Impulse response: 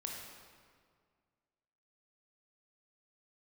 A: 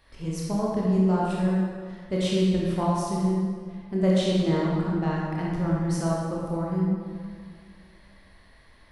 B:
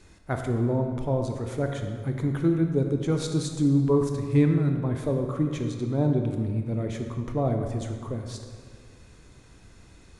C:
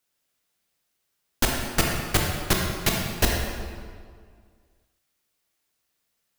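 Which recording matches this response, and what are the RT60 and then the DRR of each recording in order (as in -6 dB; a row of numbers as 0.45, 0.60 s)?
C; 1.9, 1.9, 1.9 s; -5.0, 4.0, -1.0 dB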